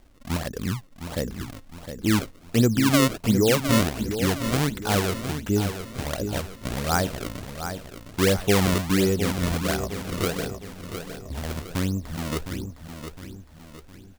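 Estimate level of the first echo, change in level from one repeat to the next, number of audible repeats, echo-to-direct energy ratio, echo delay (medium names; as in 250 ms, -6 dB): -9.0 dB, -7.0 dB, 4, -8.0 dB, 710 ms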